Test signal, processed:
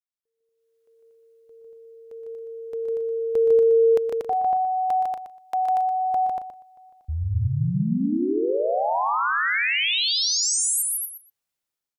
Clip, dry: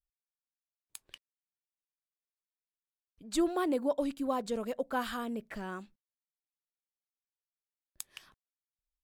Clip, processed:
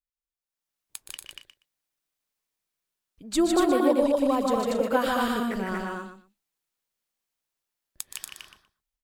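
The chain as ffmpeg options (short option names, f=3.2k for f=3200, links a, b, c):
-filter_complex "[0:a]asplit=2[a][b];[b]aecho=0:1:151.6|236.2:0.708|0.708[c];[a][c]amix=inputs=2:normalize=0,dynaudnorm=f=110:g=11:m=15.5dB,asplit=2[d][e];[e]aecho=0:1:121|242:0.316|0.0506[f];[d][f]amix=inputs=2:normalize=0,volume=-7.5dB"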